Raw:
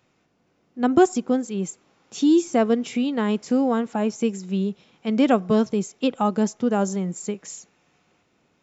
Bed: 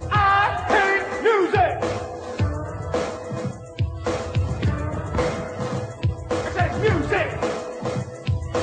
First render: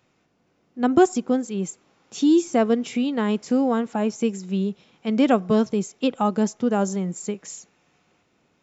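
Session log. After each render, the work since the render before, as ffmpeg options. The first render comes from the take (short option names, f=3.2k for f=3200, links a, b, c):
-af anull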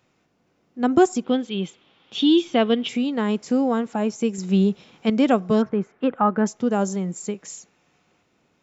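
-filter_complex "[0:a]asettb=1/sr,asplit=3[a][b][c];[a]atrim=end=1.244[d];[b]atrim=start=1.24:end=2.89,asetpts=PTS-STARTPTS,afade=t=in:d=0.004:c=qsin,afade=t=out:st=1.646:d=0.004:c=qsin,lowpass=f=3.3k:t=q:w=5.7[e];[c]atrim=start=2.886[f];[d][e]acrossfade=d=0.004:c1=hsin:c2=qsin[g];[g][f]acrossfade=d=0.004:c1=qsin:c2=hsin,asettb=1/sr,asplit=3[h][i][j];[h]atrim=end=4.384[k];[i]atrim=start=4.38:end=5.1,asetpts=PTS-STARTPTS,afade=t=in:d=0.004:c=qsin,afade=t=out:st=0.716:d=0.004:c=qsin,acontrast=54[l];[j]atrim=start=5.096[m];[k][l]acrossfade=d=0.004:c1=hsin:c2=qsin[n];[n][m]acrossfade=d=0.004:c1=qsin:c2=hsin,asettb=1/sr,asplit=3[o][p][q];[o]atrim=end=5.624[r];[p]atrim=start=5.62:end=6.46,asetpts=PTS-STARTPTS,afade=t=in:d=0.004:c=qsin,afade=t=out:st=0.836:d=0.004:c=qsin,lowpass=f=1.6k:t=q:w=2.6[s];[q]atrim=start=6.456[t];[r][s]acrossfade=d=0.004:c1=hsin:c2=qsin[u];[u][t]acrossfade=d=0.004:c1=qsin:c2=hsin"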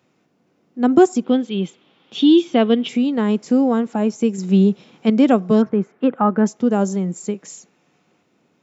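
-af "highpass=180,lowshelf=f=380:g=9"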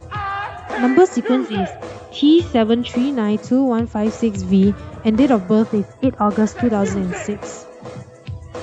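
-filter_complex "[1:a]volume=-7dB[a];[0:a][a]amix=inputs=2:normalize=0"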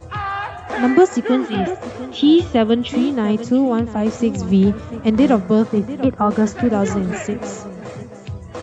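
-filter_complex "[0:a]asplit=2[a][b];[b]adelay=694,lowpass=f=3.8k:p=1,volume=-14dB,asplit=2[c][d];[d]adelay=694,lowpass=f=3.8k:p=1,volume=0.31,asplit=2[e][f];[f]adelay=694,lowpass=f=3.8k:p=1,volume=0.31[g];[a][c][e][g]amix=inputs=4:normalize=0"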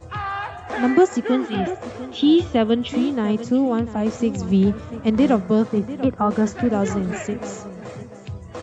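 -af "volume=-3dB"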